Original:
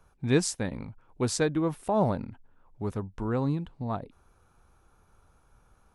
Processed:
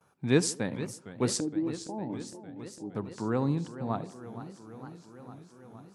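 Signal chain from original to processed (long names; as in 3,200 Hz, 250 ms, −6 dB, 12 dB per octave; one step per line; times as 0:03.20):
high-pass filter 120 Hz 24 dB per octave
noise gate with hold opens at −59 dBFS
0:01.40–0:02.95: formant resonators in series u
tape delay 75 ms, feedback 65%, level −16.5 dB, low-pass 1,300 Hz
feedback echo with a swinging delay time 460 ms, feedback 74%, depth 203 cents, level −13.5 dB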